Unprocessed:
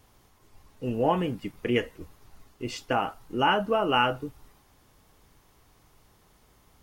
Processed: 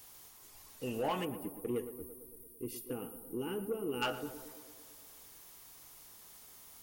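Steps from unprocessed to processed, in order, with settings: pre-emphasis filter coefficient 0.8; time-frequency box 1.25–4.02 s, 510–8900 Hz -22 dB; bass shelf 200 Hz -9.5 dB; in parallel at +2 dB: compression, threshold -48 dBFS, peak gain reduction 15 dB; on the sum: saturation -31.5 dBFS, distortion -14 dB; on a send: tape echo 114 ms, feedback 76%, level -10 dB, low-pass 1.5 kHz; on the sum: trim +4.5 dB

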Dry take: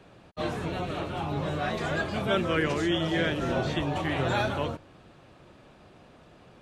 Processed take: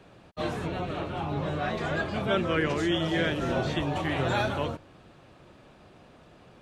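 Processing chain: 0.66–2.77 s: treble shelf 5.3 kHz -> 7.8 kHz -9 dB

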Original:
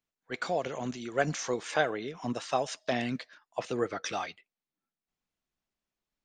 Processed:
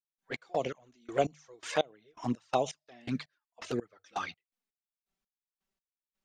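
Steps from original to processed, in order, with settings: hum notches 50/100/150 Hz; trance gate ".x.x..x..x." 83 bpm -24 dB; touch-sensitive flanger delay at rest 5.2 ms, full sweep at -27.5 dBFS; trim +3 dB

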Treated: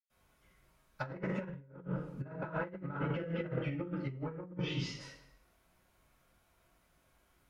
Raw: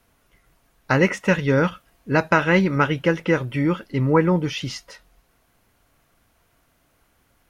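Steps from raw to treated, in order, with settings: saturation -10.5 dBFS, distortion -17 dB; low-pass that closes with the level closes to 1.3 kHz, closed at -19 dBFS; 1.38–2.24 s: bass shelf 230 Hz +8.5 dB; 2.92–4.27 s: band-stop 1 kHz, Q 5.8; reverberation RT60 0.80 s, pre-delay 97 ms; compressor with a negative ratio -31 dBFS, ratio -0.5; trim -7 dB

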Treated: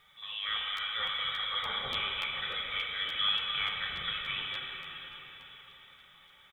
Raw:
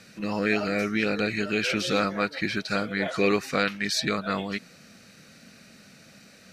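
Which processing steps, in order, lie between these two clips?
comb 2.8 ms, depth 49%; flange 0.9 Hz, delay 6.7 ms, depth 1.4 ms, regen +45%; frequency inversion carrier 3.7 kHz; plate-style reverb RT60 4.6 s, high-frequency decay 0.9×, DRR -1.5 dB; bit crusher 11-bit; crackling interface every 0.29 s, samples 512, repeat, from 0.76 s; trim -7 dB

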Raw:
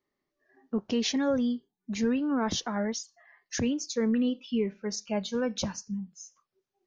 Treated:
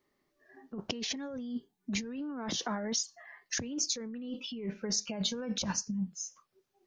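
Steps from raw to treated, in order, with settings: 2.49–3.00 s: high-pass 170 Hz; compressor with a negative ratio -36 dBFS, ratio -1

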